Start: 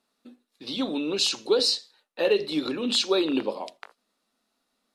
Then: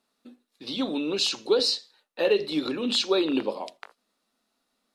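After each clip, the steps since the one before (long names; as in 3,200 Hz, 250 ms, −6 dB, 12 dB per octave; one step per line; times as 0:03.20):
dynamic equaliser 9,600 Hz, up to −5 dB, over −42 dBFS, Q 0.83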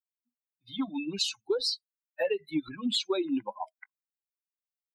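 spectral dynamics exaggerated over time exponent 3
downward compressor 6 to 1, threshold −32 dBFS, peak gain reduction 11 dB
level +6 dB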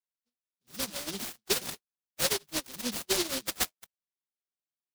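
lower of the sound and its delayed copy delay 5.3 ms
loudspeaker in its box 170–3,100 Hz, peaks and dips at 760 Hz +9 dB, 1,100 Hz +5 dB, 1,700 Hz +5 dB, 2,400 Hz −8 dB
short delay modulated by noise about 4,200 Hz, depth 0.4 ms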